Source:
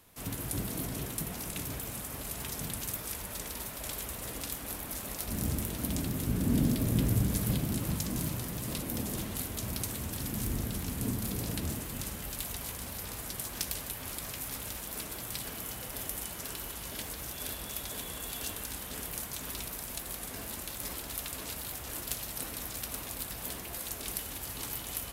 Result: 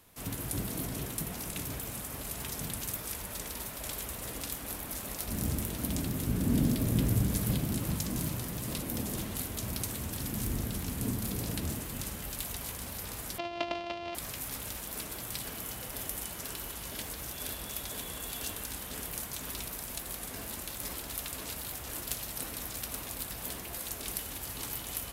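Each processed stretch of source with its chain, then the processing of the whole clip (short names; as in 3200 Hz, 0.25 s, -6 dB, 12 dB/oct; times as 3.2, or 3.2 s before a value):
13.38–14.15 sample sorter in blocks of 128 samples + speaker cabinet 110–4400 Hz, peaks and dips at 140 Hz -8 dB, 240 Hz -5 dB, 670 Hz +9 dB, 1600 Hz -7 dB, 2800 Hz +6 dB
whole clip: dry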